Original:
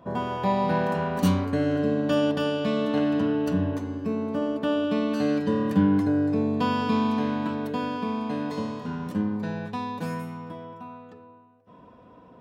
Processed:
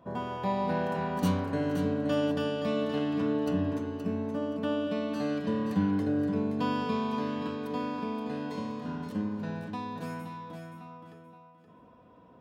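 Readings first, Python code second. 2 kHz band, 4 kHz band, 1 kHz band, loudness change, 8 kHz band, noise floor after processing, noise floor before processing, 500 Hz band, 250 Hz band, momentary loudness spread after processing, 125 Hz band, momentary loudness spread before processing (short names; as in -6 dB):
-5.5 dB, -5.5 dB, -5.5 dB, -5.5 dB, n/a, -56 dBFS, -51 dBFS, -5.0 dB, -5.5 dB, 10 LU, -5.5 dB, 9 LU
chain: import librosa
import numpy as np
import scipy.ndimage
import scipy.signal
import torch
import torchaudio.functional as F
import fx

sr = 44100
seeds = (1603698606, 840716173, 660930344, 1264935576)

y = fx.echo_feedback(x, sr, ms=523, feedback_pct=25, wet_db=-8)
y = y * librosa.db_to_amplitude(-6.0)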